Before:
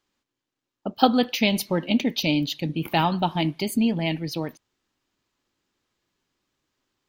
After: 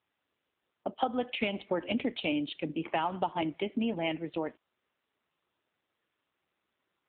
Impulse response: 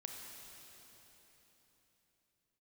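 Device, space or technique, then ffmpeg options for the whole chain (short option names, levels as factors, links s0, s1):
voicemail: -filter_complex "[0:a]asettb=1/sr,asplit=3[s0][s1][s2];[s0]atrim=end=1.794[s3];[s1]atrim=start=1.79:end=2.32,asetpts=PTS-STARTPTS,afade=t=in:d=0.004:c=qsin,afade=t=out:st=0.526:d=0.004:c=qsin,highpass=f=84:w=0.5412,highpass=f=84:w=1.3066[s4];[s2]atrim=start=2.316[s5];[s3][s4]acrossfade=d=0.004:c1=hsin:c2=qsin[s6];[s6][s5]acrossfade=d=0.004:c1=qsin:c2=hsin,highpass=350,lowpass=2700,acompressor=threshold=0.0562:ratio=8" -ar 8000 -c:a libopencore_amrnb -b:a 7400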